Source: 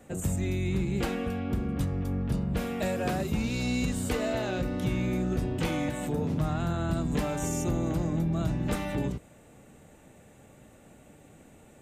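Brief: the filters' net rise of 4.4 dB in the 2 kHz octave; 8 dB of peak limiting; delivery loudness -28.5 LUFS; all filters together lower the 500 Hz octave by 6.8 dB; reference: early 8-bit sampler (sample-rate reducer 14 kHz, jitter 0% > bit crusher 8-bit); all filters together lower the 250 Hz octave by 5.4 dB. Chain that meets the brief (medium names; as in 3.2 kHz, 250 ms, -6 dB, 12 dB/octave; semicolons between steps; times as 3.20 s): peaking EQ 250 Hz -6 dB; peaking EQ 500 Hz -7.5 dB; peaking EQ 2 kHz +6 dB; peak limiter -25.5 dBFS; sample-rate reducer 14 kHz, jitter 0%; bit crusher 8-bit; trim +6 dB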